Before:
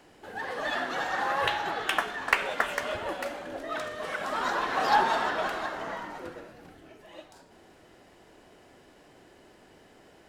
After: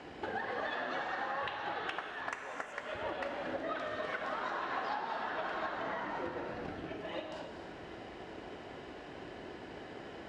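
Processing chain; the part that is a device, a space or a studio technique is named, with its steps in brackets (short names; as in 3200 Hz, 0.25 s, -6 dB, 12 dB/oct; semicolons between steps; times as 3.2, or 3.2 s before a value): drum-bus smash (transient shaper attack +6 dB, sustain +1 dB; compressor 12:1, threshold -42 dBFS, peak gain reduction 31 dB; soft clip -32 dBFS, distortion -22 dB); HPF 42 Hz; LPF 3800 Hz 12 dB/oct; 2.32–2.73 resonant high shelf 5200 Hz +9 dB, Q 3; non-linear reverb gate 0.33 s flat, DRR 4.5 dB; gain +7 dB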